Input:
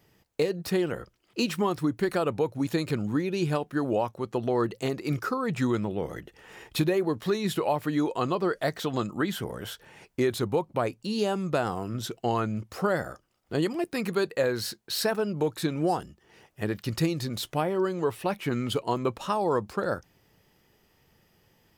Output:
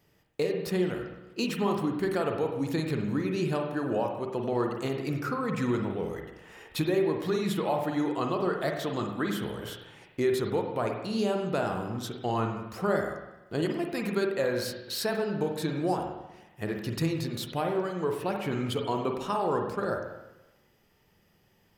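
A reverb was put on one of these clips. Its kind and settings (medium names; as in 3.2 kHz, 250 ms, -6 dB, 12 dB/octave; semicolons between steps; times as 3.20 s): spring tank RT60 1 s, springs 44/49 ms, chirp 60 ms, DRR 2.5 dB; trim -3.5 dB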